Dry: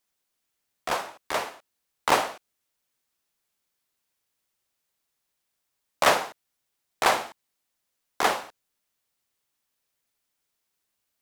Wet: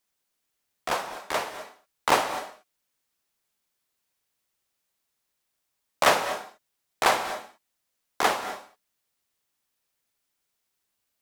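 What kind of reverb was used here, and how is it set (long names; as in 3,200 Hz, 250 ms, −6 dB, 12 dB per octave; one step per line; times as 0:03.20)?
reverb whose tail is shaped and stops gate 270 ms rising, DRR 11 dB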